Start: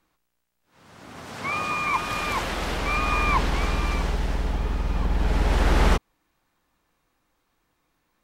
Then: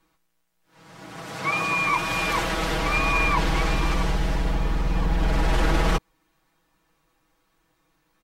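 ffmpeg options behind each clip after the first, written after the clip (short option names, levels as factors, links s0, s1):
-af "alimiter=limit=0.168:level=0:latency=1:release=10,aecho=1:1:6.2:0.98"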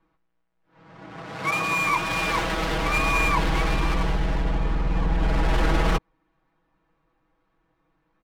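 -af "adynamicsmooth=sensitivity=7:basefreq=2200"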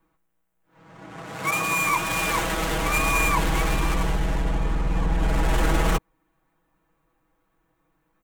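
-af "aexciter=amount=3.1:drive=5.7:freq=6600"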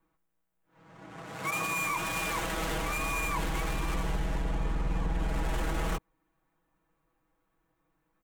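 -af "alimiter=limit=0.15:level=0:latency=1:release=39,volume=0.501"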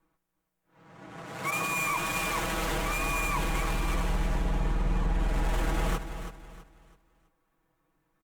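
-af "aecho=1:1:327|654|981|1308:0.316|0.104|0.0344|0.0114,volume=1.19" -ar 48000 -c:a libopus -b:a 64k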